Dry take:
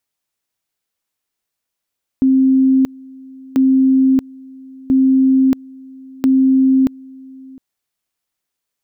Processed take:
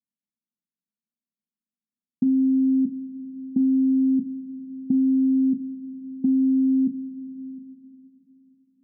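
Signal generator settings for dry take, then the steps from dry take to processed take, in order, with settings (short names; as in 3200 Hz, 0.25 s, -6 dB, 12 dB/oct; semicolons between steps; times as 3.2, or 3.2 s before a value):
two-level tone 264 Hz -8.5 dBFS, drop 25 dB, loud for 0.63 s, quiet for 0.71 s, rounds 4
Butterworth band-pass 200 Hz, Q 2.1; two-slope reverb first 0.24 s, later 4.4 s, from -21 dB, DRR 7 dB; compressor, threshold -18 dBFS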